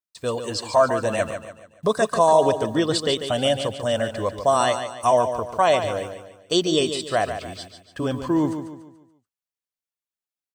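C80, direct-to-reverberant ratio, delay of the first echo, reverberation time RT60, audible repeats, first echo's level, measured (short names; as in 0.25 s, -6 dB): none, none, 0.144 s, none, 4, -9.0 dB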